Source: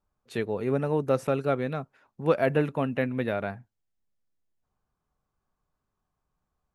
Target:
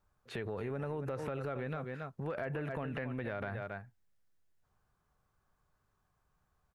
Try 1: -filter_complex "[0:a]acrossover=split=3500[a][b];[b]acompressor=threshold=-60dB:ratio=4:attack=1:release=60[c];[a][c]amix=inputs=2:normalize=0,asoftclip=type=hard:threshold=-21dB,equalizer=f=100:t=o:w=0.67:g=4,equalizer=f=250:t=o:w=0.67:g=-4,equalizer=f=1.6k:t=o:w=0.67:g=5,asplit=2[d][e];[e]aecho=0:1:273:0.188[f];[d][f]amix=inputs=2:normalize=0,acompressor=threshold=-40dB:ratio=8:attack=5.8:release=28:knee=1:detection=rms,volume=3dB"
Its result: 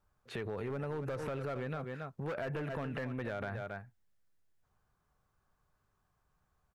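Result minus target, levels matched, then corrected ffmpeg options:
hard clip: distortion +26 dB
-filter_complex "[0:a]acrossover=split=3500[a][b];[b]acompressor=threshold=-60dB:ratio=4:attack=1:release=60[c];[a][c]amix=inputs=2:normalize=0,asoftclip=type=hard:threshold=-12dB,equalizer=f=100:t=o:w=0.67:g=4,equalizer=f=250:t=o:w=0.67:g=-4,equalizer=f=1.6k:t=o:w=0.67:g=5,asplit=2[d][e];[e]aecho=0:1:273:0.188[f];[d][f]amix=inputs=2:normalize=0,acompressor=threshold=-40dB:ratio=8:attack=5.8:release=28:knee=1:detection=rms,volume=3dB"

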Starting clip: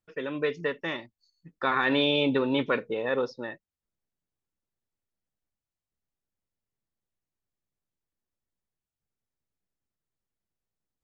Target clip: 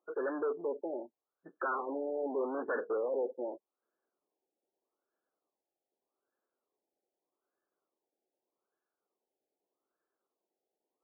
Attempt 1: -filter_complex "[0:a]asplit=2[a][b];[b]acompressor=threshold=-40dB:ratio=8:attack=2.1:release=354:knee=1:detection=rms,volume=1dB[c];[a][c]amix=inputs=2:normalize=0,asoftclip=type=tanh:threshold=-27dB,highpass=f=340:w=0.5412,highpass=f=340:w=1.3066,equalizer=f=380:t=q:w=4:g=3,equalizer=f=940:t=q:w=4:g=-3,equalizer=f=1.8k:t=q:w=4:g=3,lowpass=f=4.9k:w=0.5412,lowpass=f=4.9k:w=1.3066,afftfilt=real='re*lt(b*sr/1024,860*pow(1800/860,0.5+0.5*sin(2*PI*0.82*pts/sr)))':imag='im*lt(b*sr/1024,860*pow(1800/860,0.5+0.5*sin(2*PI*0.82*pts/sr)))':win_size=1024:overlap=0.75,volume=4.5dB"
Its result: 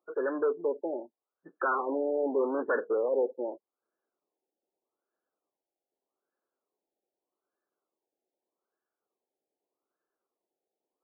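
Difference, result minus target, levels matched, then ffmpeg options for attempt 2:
soft clip: distortion -4 dB
-filter_complex "[0:a]asplit=2[a][b];[b]acompressor=threshold=-40dB:ratio=8:attack=2.1:release=354:knee=1:detection=rms,volume=1dB[c];[a][c]amix=inputs=2:normalize=0,asoftclip=type=tanh:threshold=-34.5dB,highpass=f=340:w=0.5412,highpass=f=340:w=1.3066,equalizer=f=380:t=q:w=4:g=3,equalizer=f=940:t=q:w=4:g=-3,equalizer=f=1.8k:t=q:w=4:g=3,lowpass=f=4.9k:w=0.5412,lowpass=f=4.9k:w=1.3066,afftfilt=real='re*lt(b*sr/1024,860*pow(1800/860,0.5+0.5*sin(2*PI*0.82*pts/sr)))':imag='im*lt(b*sr/1024,860*pow(1800/860,0.5+0.5*sin(2*PI*0.82*pts/sr)))':win_size=1024:overlap=0.75,volume=4.5dB"

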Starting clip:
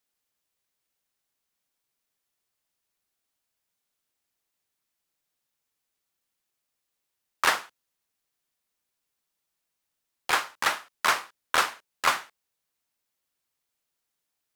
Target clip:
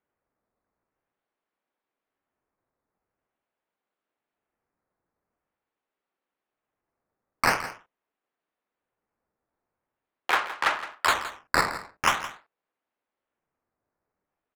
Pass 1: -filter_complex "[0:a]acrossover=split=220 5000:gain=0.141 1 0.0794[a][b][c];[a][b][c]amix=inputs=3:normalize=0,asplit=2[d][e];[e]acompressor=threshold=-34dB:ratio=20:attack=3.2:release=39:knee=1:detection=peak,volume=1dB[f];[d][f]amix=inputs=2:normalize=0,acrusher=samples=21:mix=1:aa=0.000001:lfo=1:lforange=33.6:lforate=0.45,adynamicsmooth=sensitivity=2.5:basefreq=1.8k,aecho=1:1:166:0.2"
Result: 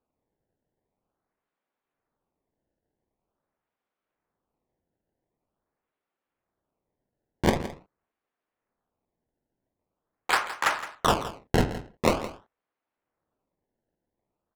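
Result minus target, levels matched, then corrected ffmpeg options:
decimation with a swept rate: distortion +11 dB
-filter_complex "[0:a]acrossover=split=220 5000:gain=0.141 1 0.0794[a][b][c];[a][b][c]amix=inputs=3:normalize=0,asplit=2[d][e];[e]acompressor=threshold=-34dB:ratio=20:attack=3.2:release=39:knee=1:detection=peak,volume=1dB[f];[d][f]amix=inputs=2:normalize=0,acrusher=samples=8:mix=1:aa=0.000001:lfo=1:lforange=12.8:lforate=0.45,adynamicsmooth=sensitivity=2.5:basefreq=1.8k,aecho=1:1:166:0.2"

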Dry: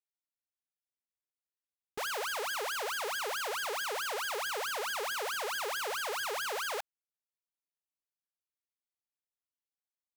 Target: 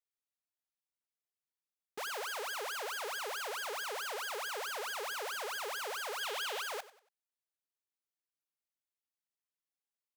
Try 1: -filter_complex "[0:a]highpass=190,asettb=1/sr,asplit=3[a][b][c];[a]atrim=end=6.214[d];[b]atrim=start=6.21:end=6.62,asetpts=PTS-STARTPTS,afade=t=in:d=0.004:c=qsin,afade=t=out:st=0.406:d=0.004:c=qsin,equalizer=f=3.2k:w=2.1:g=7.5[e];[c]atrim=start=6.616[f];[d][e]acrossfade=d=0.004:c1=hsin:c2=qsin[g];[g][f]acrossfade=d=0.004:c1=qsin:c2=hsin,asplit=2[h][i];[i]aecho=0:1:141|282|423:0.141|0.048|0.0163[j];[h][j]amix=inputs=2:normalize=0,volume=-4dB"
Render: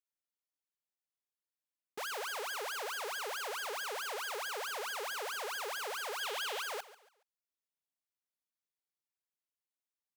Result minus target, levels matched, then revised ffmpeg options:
echo 47 ms late
-filter_complex "[0:a]highpass=190,asettb=1/sr,asplit=3[a][b][c];[a]atrim=end=6.214[d];[b]atrim=start=6.21:end=6.62,asetpts=PTS-STARTPTS,afade=t=in:d=0.004:c=qsin,afade=t=out:st=0.406:d=0.004:c=qsin,equalizer=f=3.2k:w=2.1:g=7.5[e];[c]atrim=start=6.616[f];[d][e]acrossfade=d=0.004:c1=hsin:c2=qsin[g];[g][f]acrossfade=d=0.004:c1=qsin:c2=hsin,asplit=2[h][i];[i]aecho=0:1:94|188|282:0.141|0.048|0.0163[j];[h][j]amix=inputs=2:normalize=0,volume=-4dB"

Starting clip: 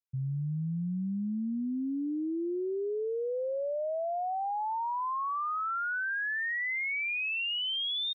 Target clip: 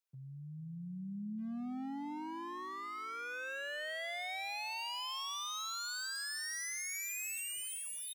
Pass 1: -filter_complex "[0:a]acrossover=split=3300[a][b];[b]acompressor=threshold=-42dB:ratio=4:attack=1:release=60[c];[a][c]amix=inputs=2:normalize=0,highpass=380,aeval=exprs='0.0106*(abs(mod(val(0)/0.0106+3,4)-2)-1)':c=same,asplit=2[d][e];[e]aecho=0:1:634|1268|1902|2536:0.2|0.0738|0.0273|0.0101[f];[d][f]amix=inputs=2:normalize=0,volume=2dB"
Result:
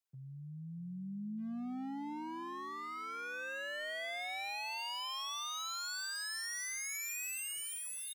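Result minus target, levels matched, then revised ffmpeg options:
echo 0.182 s late
-filter_complex "[0:a]acrossover=split=3300[a][b];[b]acompressor=threshold=-42dB:ratio=4:attack=1:release=60[c];[a][c]amix=inputs=2:normalize=0,highpass=380,aeval=exprs='0.0106*(abs(mod(val(0)/0.0106+3,4)-2)-1)':c=same,asplit=2[d][e];[e]aecho=0:1:452|904|1356|1808:0.2|0.0738|0.0273|0.0101[f];[d][f]amix=inputs=2:normalize=0,volume=2dB"

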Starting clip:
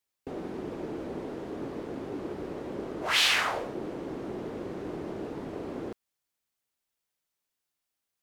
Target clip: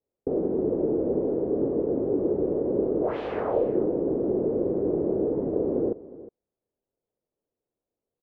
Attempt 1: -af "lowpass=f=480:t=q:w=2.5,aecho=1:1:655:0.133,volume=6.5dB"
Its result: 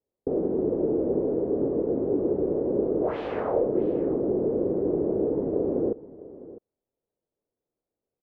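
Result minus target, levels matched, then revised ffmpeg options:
echo 0.294 s late
-af "lowpass=f=480:t=q:w=2.5,aecho=1:1:361:0.133,volume=6.5dB"

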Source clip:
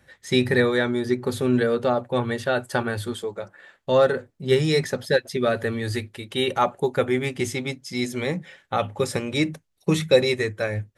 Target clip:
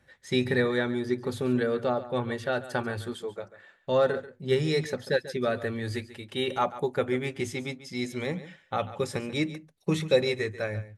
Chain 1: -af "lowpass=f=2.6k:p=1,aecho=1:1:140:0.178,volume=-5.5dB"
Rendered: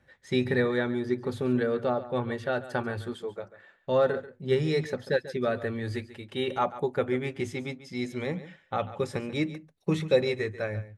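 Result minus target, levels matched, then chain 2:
8000 Hz band -6.0 dB
-af "lowpass=f=7.1k:p=1,aecho=1:1:140:0.178,volume=-5.5dB"

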